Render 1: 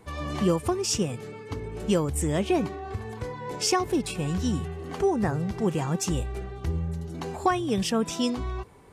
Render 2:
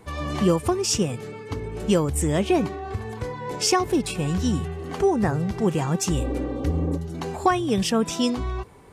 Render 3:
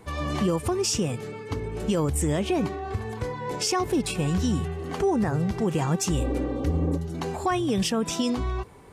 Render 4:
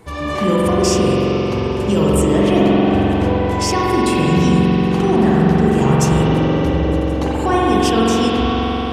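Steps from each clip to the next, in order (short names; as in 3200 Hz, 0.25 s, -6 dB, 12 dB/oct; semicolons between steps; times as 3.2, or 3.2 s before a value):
spectral repair 6.2–6.95, 220–1300 Hz before; gain +3.5 dB
limiter -16 dBFS, peak gain reduction 7.5 dB
reverb RT60 5.3 s, pre-delay 44 ms, DRR -7.5 dB; gain +4 dB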